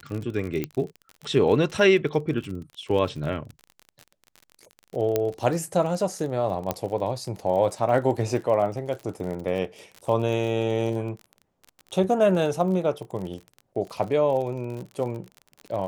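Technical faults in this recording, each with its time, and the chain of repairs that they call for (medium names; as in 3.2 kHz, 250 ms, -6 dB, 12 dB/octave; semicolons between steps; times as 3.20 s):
crackle 38 per s -32 dBFS
0.64 s: pop -14 dBFS
5.16 s: pop -9 dBFS
6.71 s: pop -10 dBFS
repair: de-click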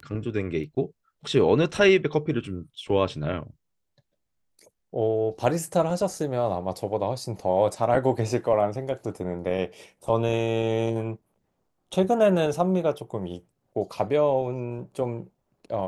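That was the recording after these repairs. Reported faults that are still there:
0.64 s: pop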